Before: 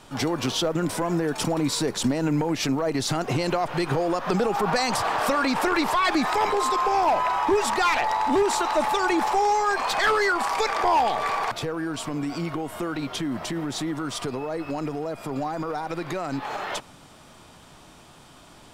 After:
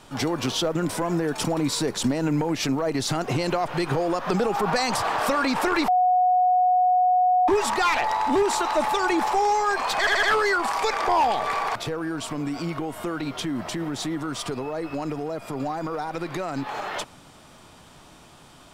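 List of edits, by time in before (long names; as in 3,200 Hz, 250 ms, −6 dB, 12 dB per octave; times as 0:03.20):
0:05.88–0:07.48: beep over 731 Hz −16 dBFS
0:09.99: stutter 0.08 s, 4 plays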